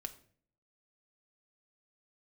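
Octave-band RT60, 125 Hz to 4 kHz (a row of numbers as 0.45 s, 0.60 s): 0.75 s, 0.75 s, 0.60 s, 0.45 s, 0.45 s, 0.40 s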